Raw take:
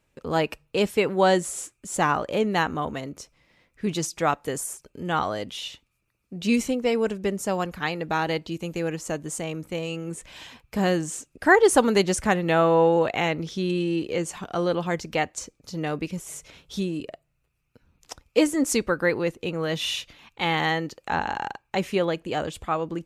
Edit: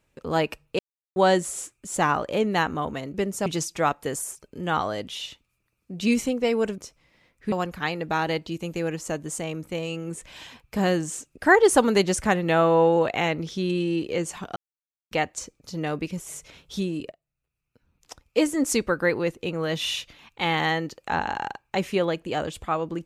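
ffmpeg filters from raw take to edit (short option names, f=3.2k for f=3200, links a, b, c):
-filter_complex "[0:a]asplit=10[a][b][c][d][e][f][g][h][i][j];[a]atrim=end=0.79,asetpts=PTS-STARTPTS,afade=t=out:st=0.786:d=0.004:c=hsin[k];[b]atrim=start=0.79:end=1.16,asetpts=PTS-STARTPTS,volume=0[l];[c]atrim=start=1.16:end=3.142,asetpts=PTS-STARTPTS,afade=t=in:d=0.004:c=hsin[m];[d]atrim=start=7.198:end=7.522[n];[e]atrim=start=3.878:end=7.202[o];[f]atrim=start=3.138:end=3.882[p];[g]atrim=start=7.518:end=14.56,asetpts=PTS-STARTPTS,afade=t=out:st=7.038:d=0.004:c=hsin[q];[h]atrim=start=14.56:end=15.11,asetpts=PTS-STARTPTS,volume=0[r];[i]atrim=start=15.11:end=17.12,asetpts=PTS-STARTPTS,afade=t=in:d=0.004:c=hsin,afade=t=out:st=2.006:d=0.004:c=hsin:silence=0.133352[s];[j]atrim=start=17.12,asetpts=PTS-STARTPTS,afade=t=in:d=1.62:silence=0.133352[t];[k][l][m]concat=n=3:v=0:a=1[u];[u][n]acrossfade=d=0.004:c1=hsin:c2=hsin[v];[v][o]acrossfade=d=0.004:c1=hsin:c2=hsin[w];[w][p]acrossfade=d=0.004:c1=hsin:c2=hsin[x];[q][r][s][t]concat=n=4:v=0:a=1[y];[x][y]acrossfade=d=0.004:c1=hsin:c2=hsin"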